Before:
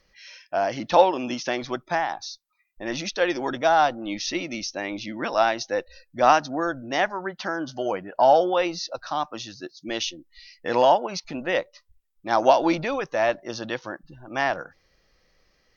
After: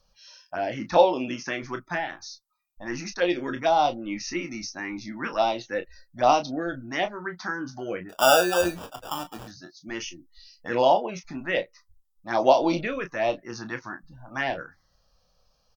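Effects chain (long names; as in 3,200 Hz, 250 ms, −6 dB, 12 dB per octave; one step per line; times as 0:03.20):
phaser swept by the level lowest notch 340 Hz, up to 1,700 Hz, full sweep at −17 dBFS
0:08.09–0:09.48: sample-rate reduction 2,100 Hz, jitter 0%
on a send: ambience of single reflections 23 ms −9.5 dB, 34 ms −11.5 dB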